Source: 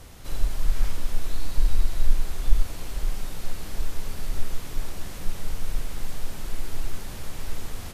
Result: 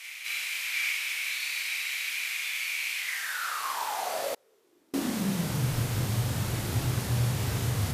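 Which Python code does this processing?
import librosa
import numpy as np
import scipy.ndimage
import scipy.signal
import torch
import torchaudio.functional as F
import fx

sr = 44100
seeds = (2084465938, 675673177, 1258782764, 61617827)

y = fx.filter_sweep_highpass(x, sr, from_hz=2300.0, to_hz=110.0, start_s=2.98, end_s=5.78, q=7.8)
y = fx.room_early_taps(y, sr, ms=(25, 40), db=(-8.0, -3.0))
y = fx.gate_flip(y, sr, shuts_db=-31.0, range_db=-35, at=(4.34, 4.94))
y = F.gain(torch.from_numpy(y), 4.0).numpy()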